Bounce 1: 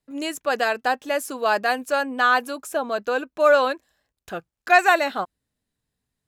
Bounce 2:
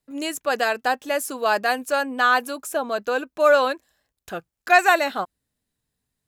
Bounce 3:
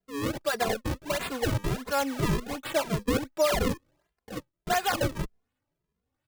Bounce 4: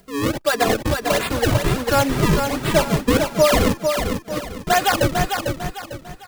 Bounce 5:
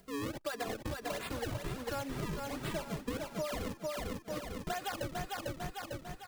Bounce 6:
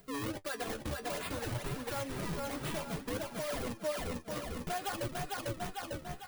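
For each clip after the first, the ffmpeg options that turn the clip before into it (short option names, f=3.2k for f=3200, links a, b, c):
-af "highshelf=f=7.3k:g=5.5"
-filter_complex "[0:a]alimiter=limit=-14.5dB:level=0:latency=1:release=138,acrusher=samples=35:mix=1:aa=0.000001:lfo=1:lforange=56:lforate=1.4,asplit=2[a][b];[b]adelay=2.5,afreqshift=1.7[c];[a][c]amix=inputs=2:normalize=1"
-filter_complex "[0:a]acompressor=mode=upward:threshold=-47dB:ratio=2.5,asplit=2[a][b];[b]aecho=0:1:449|898|1347|1796:0.531|0.186|0.065|0.0228[c];[a][c]amix=inputs=2:normalize=0,volume=9dB"
-af "acompressor=threshold=-27dB:ratio=6,volume=-8.5dB"
-filter_complex "[0:a]asplit=2[a][b];[b]aeval=exprs='(mod(37.6*val(0)+1,2)-1)/37.6':c=same,volume=-5dB[c];[a][c]amix=inputs=2:normalize=0,aexciter=amount=1.2:drive=4.1:freq=9.6k,flanger=delay=6.7:depth=7.6:regen=45:speed=0.57:shape=triangular,volume=1.5dB"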